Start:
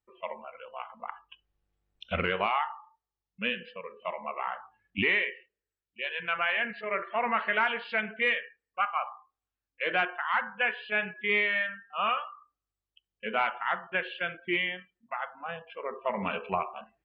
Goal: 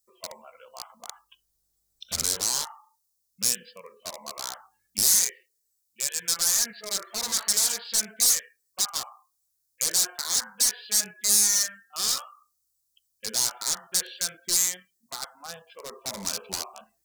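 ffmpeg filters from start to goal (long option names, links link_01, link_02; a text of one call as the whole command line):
ffmpeg -i in.wav -af "aeval=exprs='0.0376*(abs(mod(val(0)/0.0376+3,4)-2)-1)':channel_layout=same,aexciter=amount=8.6:drive=8.5:freq=4200,volume=-4.5dB" out.wav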